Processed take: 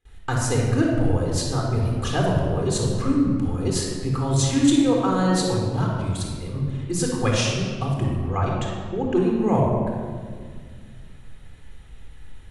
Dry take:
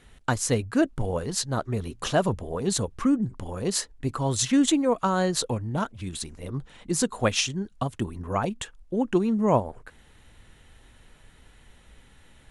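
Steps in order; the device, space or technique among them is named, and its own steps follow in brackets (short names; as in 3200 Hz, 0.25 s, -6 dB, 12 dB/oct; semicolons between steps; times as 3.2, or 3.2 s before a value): 8.23–9.15 LPF 7000 Hz 24 dB/oct; gate with hold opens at -46 dBFS; low shelf boost with a cut just above (low shelf 100 Hz +6.5 dB; bell 190 Hz -2.5 dB 0.81 oct); shoebox room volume 2900 m³, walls mixed, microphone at 3.9 m; gain -4 dB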